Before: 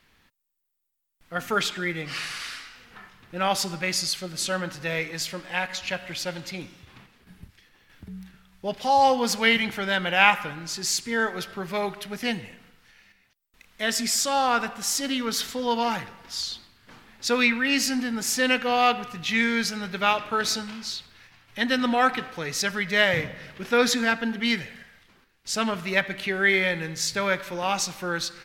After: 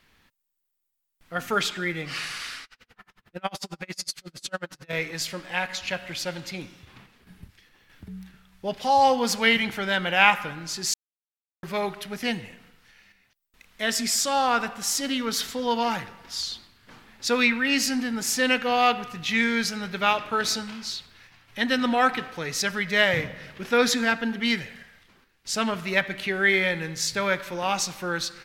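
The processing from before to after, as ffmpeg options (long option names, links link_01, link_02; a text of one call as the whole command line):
ffmpeg -i in.wav -filter_complex "[0:a]asettb=1/sr,asplit=3[link_01][link_02][link_03];[link_01]atrim=end=2.644[link_04];[link_02]atrim=start=2.64:end=4.93,asetpts=PTS-STARTPTS,afade=type=in:duration=0.004:curve=qsin,afade=type=out:start_time=2.286:duration=0.004:curve=qsin,aeval=exprs='val(0)*pow(10,-36*(0.5-0.5*cos(2*PI*11*n/s))/20)':channel_layout=same[link_05];[link_03]atrim=start=4.926[link_06];[link_04][link_05]acrossfade=duration=0.004:curve1=hsin:curve2=qsin[link_07];[link_07][link_06]acrossfade=duration=0.004:curve1=qsin:curve2=hsin,asplit=3[link_08][link_09][link_10];[link_08]atrim=end=10.94,asetpts=PTS-STARTPTS,afade=type=out:start_time=10.936:duration=0.004:curve=hsin[link_11];[link_09]atrim=start=10.94:end=11.63,asetpts=PTS-STARTPTS,volume=0[link_12];[link_10]atrim=start=11.63,asetpts=PTS-STARTPTS,afade=type=in:duration=0.004:curve=hsin[link_13];[link_11][link_12][link_13]concat=n=3:v=0:a=1" out.wav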